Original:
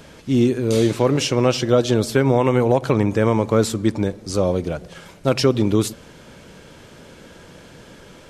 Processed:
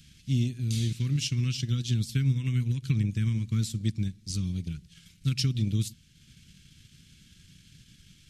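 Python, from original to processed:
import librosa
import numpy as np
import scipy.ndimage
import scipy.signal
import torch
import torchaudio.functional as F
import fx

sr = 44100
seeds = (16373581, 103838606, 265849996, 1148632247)

y = scipy.signal.sosfilt(scipy.signal.cheby1(2, 1.0, [140.0, 3200.0], 'bandstop', fs=sr, output='sos'), x)
y = fx.dynamic_eq(y, sr, hz=160.0, q=0.76, threshold_db=-35.0, ratio=4.0, max_db=4)
y = fx.transient(y, sr, attack_db=3, sustain_db=-5)
y = y * 10.0 ** (-6.5 / 20.0)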